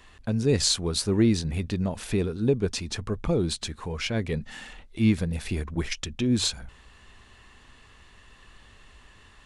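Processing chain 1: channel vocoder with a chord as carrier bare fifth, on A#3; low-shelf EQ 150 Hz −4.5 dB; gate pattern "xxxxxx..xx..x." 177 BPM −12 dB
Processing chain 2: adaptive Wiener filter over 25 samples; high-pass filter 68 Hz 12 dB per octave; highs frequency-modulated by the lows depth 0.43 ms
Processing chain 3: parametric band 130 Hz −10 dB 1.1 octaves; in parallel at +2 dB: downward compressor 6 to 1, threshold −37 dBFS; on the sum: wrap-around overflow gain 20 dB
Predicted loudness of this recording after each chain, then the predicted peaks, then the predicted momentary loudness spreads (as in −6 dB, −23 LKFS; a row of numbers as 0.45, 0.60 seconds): −30.0, −27.5, −27.5 LKFS; −11.0, −11.0, −20.0 dBFS; 16, 11, 22 LU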